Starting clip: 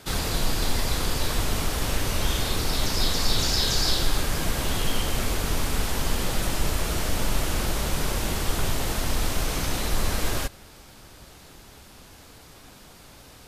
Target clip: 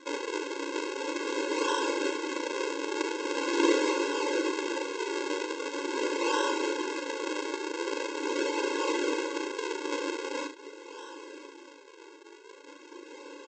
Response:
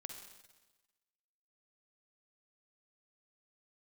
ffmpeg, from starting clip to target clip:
-filter_complex "[0:a]acrossover=split=720[a][b];[a]aeval=exprs='val(0)*(1-0.7/2+0.7/2*cos(2*PI*1.5*n/s))':c=same[c];[b]aeval=exprs='val(0)*(1-0.7/2-0.7/2*cos(2*PI*1.5*n/s))':c=same[d];[c][d]amix=inputs=2:normalize=0,aresample=16000,acrusher=samples=35:mix=1:aa=0.000001:lfo=1:lforange=56:lforate=0.43,aresample=44100,equalizer=f=2.6k:w=6.7:g=4,aecho=1:1:38|70:0.473|0.282,asplit=2[e][f];[f]acompressor=threshold=-34dB:ratio=6,volume=3dB[g];[e][g]amix=inputs=2:normalize=0,afftfilt=real='re*eq(mod(floor(b*sr/1024/280),2),1)':imag='im*eq(mod(floor(b*sr/1024/280),2),1)':win_size=1024:overlap=0.75,volume=4dB"

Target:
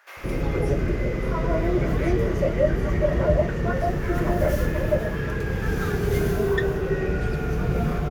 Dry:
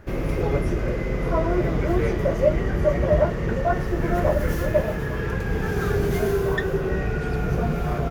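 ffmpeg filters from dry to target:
-filter_complex "[0:a]acrossover=split=830[a][b];[a]adelay=170[c];[c][b]amix=inputs=2:normalize=0"

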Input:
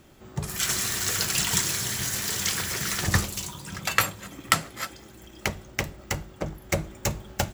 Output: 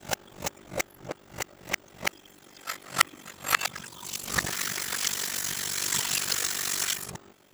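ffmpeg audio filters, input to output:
-af "areverse,highpass=f=400:p=1,aeval=exprs='val(0)*sin(2*PI*24*n/s)':c=same,volume=1dB"

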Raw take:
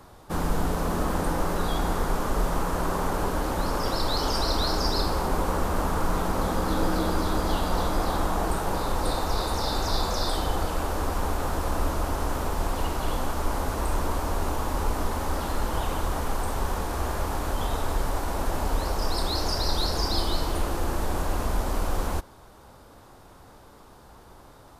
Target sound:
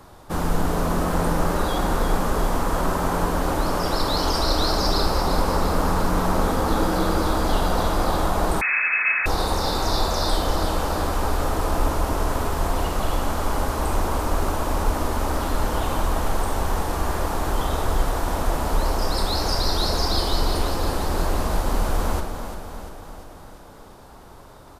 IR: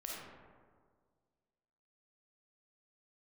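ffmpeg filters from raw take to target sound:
-filter_complex "[0:a]aecho=1:1:345|690|1035|1380|1725|2070|2415:0.355|0.209|0.124|0.0729|0.043|0.0254|0.015,asplit=2[a][b];[1:a]atrim=start_sample=2205[c];[b][c]afir=irnorm=-1:irlink=0,volume=-2.5dB[d];[a][d]amix=inputs=2:normalize=0,asettb=1/sr,asplit=3[e][f][g];[e]atrim=end=8.614[h];[f]atrim=start=8.61:end=9.26,asetpts=PTS-STARTPTS,afade=t=in:d=0.004:c=qsin,afade=t=out:st=0.646:d=0.004:c=qsin,lowpass=f=2.2k:t=q:w=0.5098,lowpass=f=2.2k:t=q:w=0.6013,lowpass=f=2.2k:t=q:w=0.9,lowpass=f=2.2k:t=q:w=2.563,afreqshift=-2600[i];[g]atrim=start=9.256[j];[h][i]acrossfade=d=0.004:c1=hsin:c2=qsin[k];[k][j]acrossfade=d=0.004:c1=qsin:c2=hsin"

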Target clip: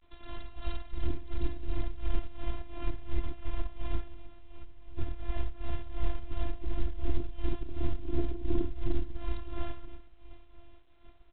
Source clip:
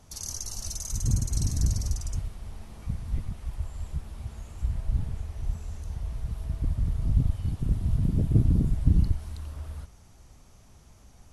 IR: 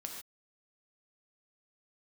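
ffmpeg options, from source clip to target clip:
-filter_complex "[0:a]agate=range=-33dB:threshold=-44dB:ratio=3:detection=peak,acontrast=70,alimiter=limit=-18dB:level=0:latency=1:release=216,asplit=3[a][b][c];[a]afade=t=out:st=4.13:d=0.02[d];[b]acompressor=threshold=-41dB:ratio=16,afade=t=in:st=4.13:d=0.02,afade=t=out:st=4.96:d=0.02[e];[c]afade=t=in:st=4.96:d=0.02[f];[d][e][f]amix=inputs=3:normalize=0,aeval=exprs='0.211*(cos(1*acos(clip(val(0)/0.211,-1,1)))-cos(1*PI/2))+0.00211*(cos(3*acos(clip(val(0)/0.211,-1,1)))-cos(3*PI/2))+0.0075*(cos(8*acos(clip(val(0)/0.211,-1,1)))-cos(8*PI/2))':c=same,afftfilt=real='hypot(re,im)*cos(PI*b)':imag='0':win_size=512:overlap=0.75,tremolo=f=2.8:d=0.8,aecho=1:1:972:0.0944,volume=7dB" -ar 8000 -c:a pcm_alaw

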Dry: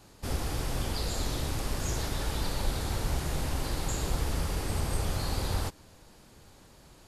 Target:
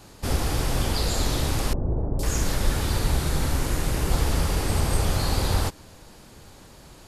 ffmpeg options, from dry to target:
-filter_complex "[0:a]asettb=1/sr,asplit=3[a][b][c];[a]atrim=end=1.734[d];[b]atrim=start=1.73:end=4.11,asetpts=PTS-STARTPTS,afade=t=in:d=0.004:c=qsin,afade=t=out:st=2.376:d=0.004:c=qsin,acrossover=split=750|3900[e][f][g];[g]adelay=460[h];[f]adelay=500[i];[e][i][h]amix=inputs=3:normalize=0,atrim=end_sample=104958[j];[c]atrim=start=4.106[k];[d][j]acrossfade=d=0.004:c1=hsin:c2=qsin[l];[l][k]acrossfade=d=0.004:c1=qsin:c2=hsin,volume=7.5dB"

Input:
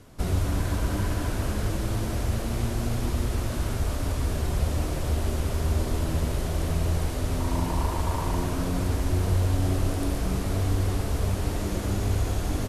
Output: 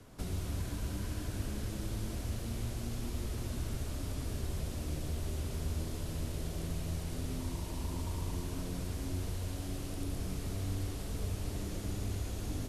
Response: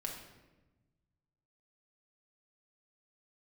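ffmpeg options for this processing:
-filter_complex "[0:a]acrossover=split=86|430|2300[a][b][c][d];[a]acompressor=threshold=-36dB:ratio=4[e];[b]acompressor=threshold=-36dB:ratio=4[f];[c]acompressor=threshold=-51dB:ratio=4[g];[d]acompressor=threshold=-45dB:ratio=4[h];[e][f][g][h]amix=inputs=4:normalize=0,asplit=2[i][j];[1:a]atrim=start_sample=2205,adelay=114[k];[j][k]afir=irnorm=-1:irlink=0,volume=-7dB[l];[i][l]amix=inputs=2:normalize=0,volume=-4.5dB"

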